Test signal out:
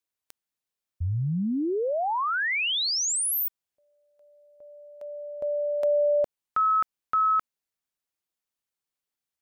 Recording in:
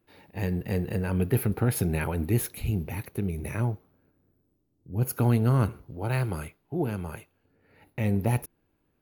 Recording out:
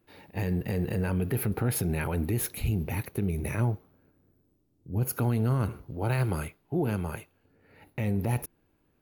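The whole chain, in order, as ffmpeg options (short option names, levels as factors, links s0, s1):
-af "alimiter=limit=0.0841:level=0:latency=1:release=62,volume=1.33"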